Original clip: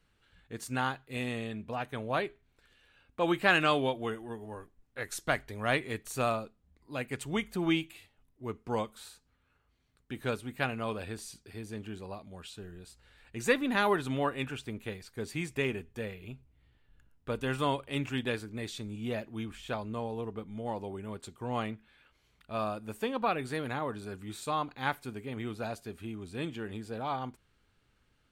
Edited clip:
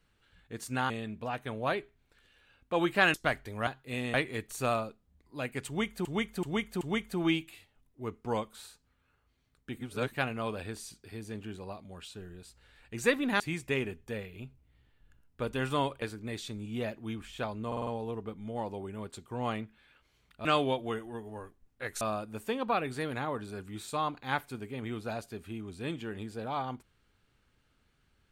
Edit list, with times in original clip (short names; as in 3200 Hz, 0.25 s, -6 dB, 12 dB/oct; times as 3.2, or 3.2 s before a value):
0.9–1.37 move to 5.7
3.61–5.17 move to 22.55
7.23–7.61 loop, 4 plays
10.19–10.55 reverse
13.82–15.28 cut
17.9–18.32 cut
19.97 stutter 0.05 s, 5 plays